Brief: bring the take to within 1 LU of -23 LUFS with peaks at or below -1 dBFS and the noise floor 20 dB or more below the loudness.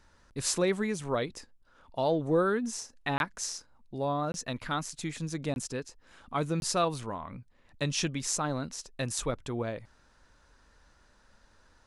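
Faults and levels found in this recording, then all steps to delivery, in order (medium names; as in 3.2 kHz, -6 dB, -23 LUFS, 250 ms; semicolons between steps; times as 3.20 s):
dropouts 4; longest dropout 21 ms; loudness -32.0 LUFS; peak level -13.0 dBFS; loudness target -23.0 LUFS
-> interpolate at 3.18/4.32/5.54/6.60 s, 21 ms; trim +9 dB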